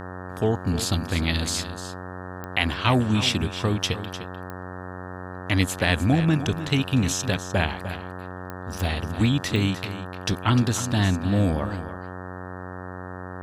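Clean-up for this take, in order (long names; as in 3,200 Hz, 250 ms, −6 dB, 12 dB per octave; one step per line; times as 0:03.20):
click removal
hum removal 91.5 Hz, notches 20
notch filter 1,300 Hz, Q 30
echo removal 302 ms −12 dB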